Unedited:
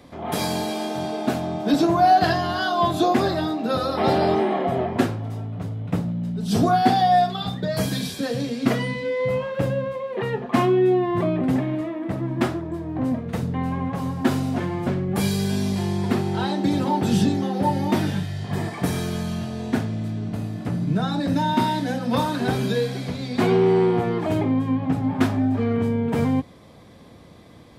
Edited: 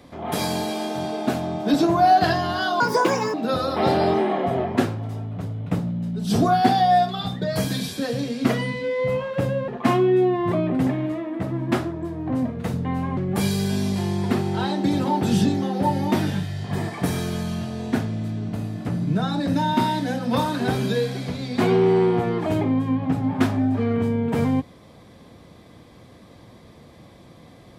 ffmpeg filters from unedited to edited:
-filter_complex "[0:a]asplit=5[a][b][c][d][e];[a]atrim=end=2.804[f];[b]atrim=start=2.8:end=3.55,asetpts=PTS-STARTPTS,asetrate=61299,aresample=44100[g];[c]atrim=start=3.546:end=9.892[h];[d]atrim=start=10.368:end=13.862[i];[e]atrim=start=14.968[j];[f][g]acrossfade=d=0.004:c1=hsin:c2=hsin[k];[k][h]acrossfade=d=0.004:c1=hsin:c2=hsin[l];[l][i]acrossfade=d=0.004:c1=hsin:c2=hsin[m];[m][j]acrossfade=d=0.004:c1=hsin:c2=hsin"

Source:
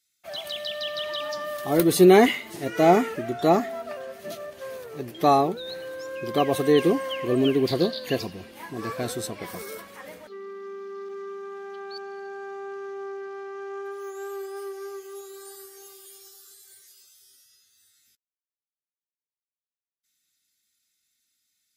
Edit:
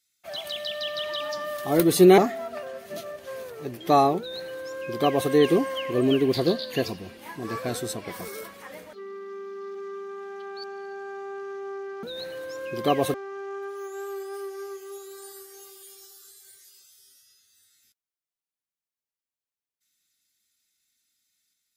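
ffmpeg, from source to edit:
-filter_complex "[0:a]asplit=4[a][b][c][d];[a]atrim=end=2.182[e];[b]atrim=start=3.518:end=13.372[f];[c]atrim=start=5.528:end=6.642[g];[d]atrim=start=13.368[h];[e][f]acrossfade=d=0.004:c1=hsin:c2=hsin[i];[i][g]acrossfade=d=0.004:c1=hsin:c2=hsin[j];[j][h]acrossfade=d=0.004:c1=hsin:c2=hsin"

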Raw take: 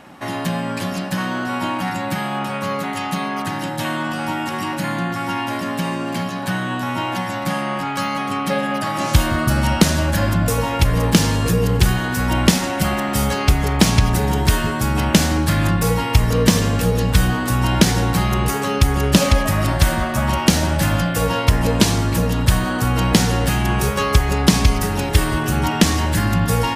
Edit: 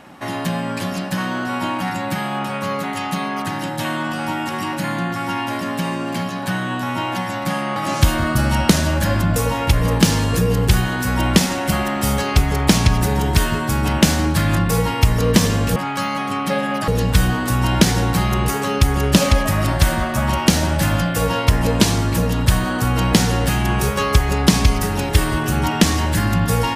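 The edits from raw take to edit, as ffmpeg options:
-filter_complex "[0:a]asplit=4[a][b][c][d];[a]atrim=end=7.762[e];[b]atrim=start=8.878:end=16.882[f];[c]atrim=start=7.758:end=8.882[g];[d]atrim=start=16.878[h];[e][f]acrossfade=d=0.004:c1=hsin:c2=hsin[i];[i][g]acrossfade=d=0.004:c1=hsin:c2=hsin[j];[j][h]acrossfade=d=0.004:c1=hsin:c2=hsin"

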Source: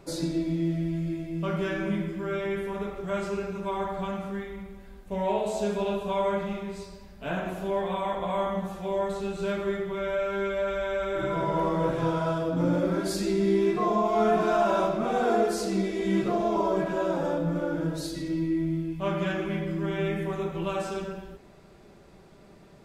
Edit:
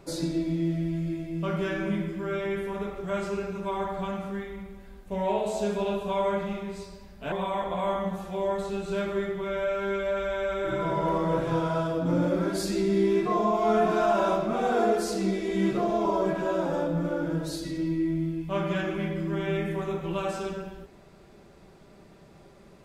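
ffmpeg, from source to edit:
-filter_complex "[0:a]asplit=2[a][b];[a]atrim=end=7.322[c];[b]atrim=start=7.828[d];[c][d]acrossfade=d=0.004:c1=hsin:c2=hsin"

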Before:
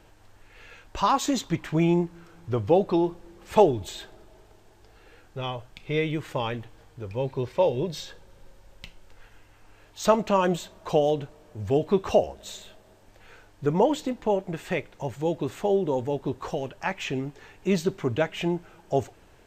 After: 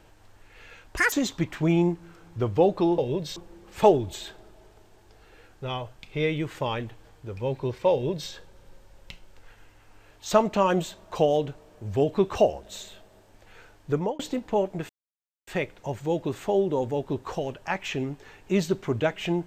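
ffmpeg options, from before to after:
-filter_complex "[0:a]asplit=7[a][b][c][d][e][f][g];[a]atrim=end=0.974[h];[b]atrim=start=0.97:end=1.24,asetpts=PTS-STARTPTS,asetrate=78057,aresample=44100,atrim=end_sample=6727,asetpts=PTS-STARTPTS[i];[c]atrim=start=1.236:end=3.102[j];[d]atrim=start=7.658:end=8.042[k];[e]atrim=start=3.098:end=13.93,asetpts=PTS-STARTPTS,afade=t=out:st=10.562:d=0.27[l];[f]atrim=start=13.93:end=14.63,asetpts=PTS-STARTPTS,afade=t=in:d=0.004:c=hsin,afade=t=out:st=0.696:d=0.004:c=hsin,apad=pad_dur=0.58[m];[g]atrim=start=14.63,asetpts=PTS-STARTPTS,afade=t=in:d=0.004:c=hsin[n];[h][i]acrossfade=d=0.004:c1=hsin:c2=hsin[o];[o][j]acrossfade=d=0.004:c1=hsin:c2=hsin[p];[p][k]acrossfade=d=0.004:c1=hsin:c2=hsin[q];[l][m][n]concat=n=3:v=0:a=1[r];[q][r]acrossfade=d=0.004:c1=hsin:c2=hsin"

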